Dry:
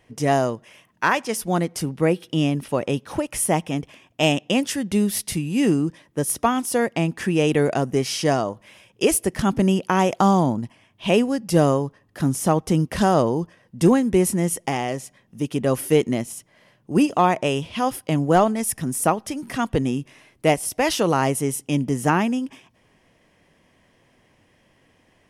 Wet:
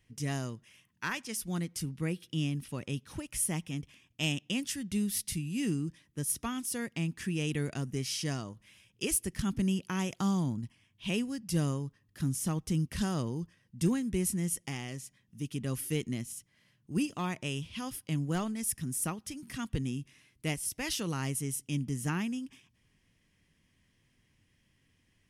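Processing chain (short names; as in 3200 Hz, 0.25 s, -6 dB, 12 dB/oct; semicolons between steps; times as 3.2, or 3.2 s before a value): passive tone stack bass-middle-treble 6-0-2; gain +7 dB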